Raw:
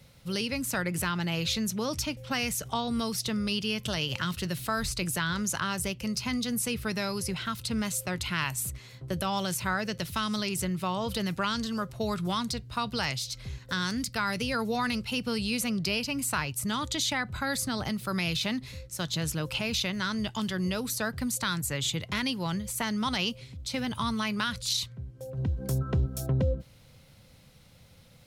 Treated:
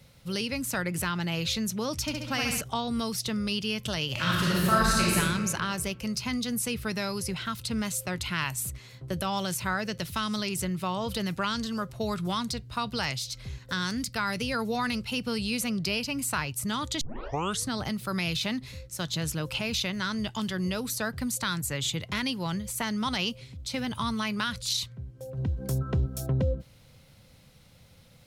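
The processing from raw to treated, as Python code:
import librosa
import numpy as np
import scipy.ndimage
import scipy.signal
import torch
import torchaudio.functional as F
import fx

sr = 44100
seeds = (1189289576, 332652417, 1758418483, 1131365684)

y = fx.room_flutter(x, sr, wall_m=11.6, rt60_s=0.96, at=(2.01, 2.61))
y = fx.reverb_throw(y, sr, start_s=4.12, length_s=1.03, rt60_s=1.9, drr_db=-7.0)
y = fx.edit(y, sr, fx.tape_start(start_s=17.01, length_s=0.66), tone=tone)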